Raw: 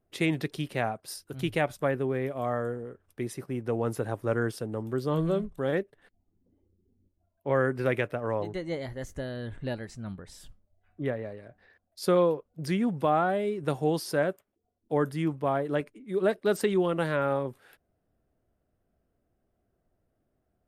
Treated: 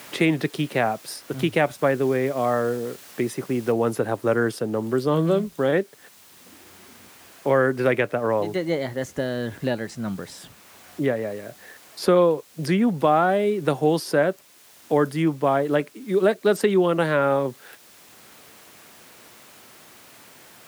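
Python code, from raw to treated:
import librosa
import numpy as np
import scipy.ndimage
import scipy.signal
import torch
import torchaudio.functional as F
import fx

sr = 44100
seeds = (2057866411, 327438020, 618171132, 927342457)

y = fx.noise_floor_step(x, sr, seeds[0], at_s=3.72, before_db=-55, after_db=-62, tilt_db=0.0)
y = scipy.signal.sosfilt(scipy.signal.butter(2, 150.0, 'highpass', fs=sr, output='sos'), y)
y = fx.high_shelf(y, sr, hz=11000.0, db=-3.0)
y = fx.band_squash(y, sr, depth_pct=40)
y = y * librosa.db_to_amplitude(7.5)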